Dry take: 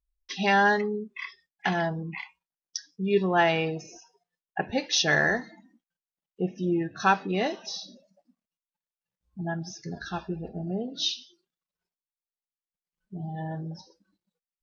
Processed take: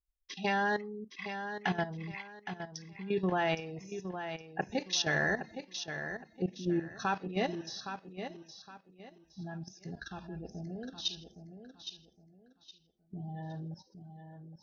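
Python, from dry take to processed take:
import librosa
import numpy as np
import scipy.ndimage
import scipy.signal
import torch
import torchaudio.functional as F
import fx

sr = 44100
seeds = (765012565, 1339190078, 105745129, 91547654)

p1 = fx.level_steps(x, sr, step_db=13)
p2 = fx.low_shelf(p1, sr, hz=180.0, db=4.5)
p3 = p2 + fx.echo_feedback(p2, sr, ms=815, feedback_pct=28, wet_db=-9, dry=0)
y = F.gain(torch.from_numpy(p3), -4.0).numpy()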